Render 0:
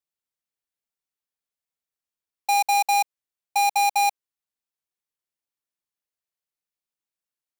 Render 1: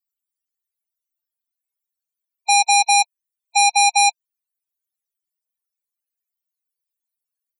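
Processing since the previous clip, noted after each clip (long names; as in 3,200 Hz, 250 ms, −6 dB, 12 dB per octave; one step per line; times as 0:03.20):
spectral peaks only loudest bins 16
RIAA equalisation recording
level +4.5 dB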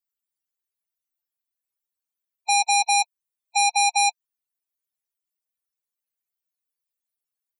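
harmonic and percussive parts rebalanced harmonic −5 dB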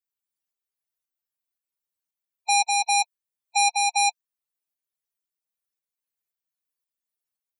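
shaped tremolo saw up 1.9 Hz, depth 40%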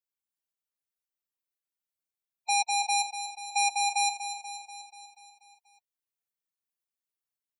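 repeating echo 242 ms, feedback 60%, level −10 dB
level −5.5 dB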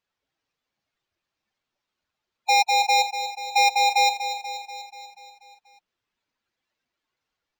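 linearly interpolated sample-rate reduction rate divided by 4×
level +8.5 dB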